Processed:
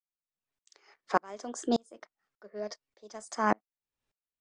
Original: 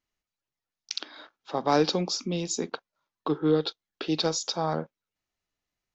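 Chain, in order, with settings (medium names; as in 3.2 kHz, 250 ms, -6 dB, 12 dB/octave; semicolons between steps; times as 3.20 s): treble shelf 4.1 kHz -10 dB; speed mistake 33 rpm record played at 45 rpm; sawtooth tremolo in dB swelling 1.7 Hz, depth 36 dB; trim +6 dB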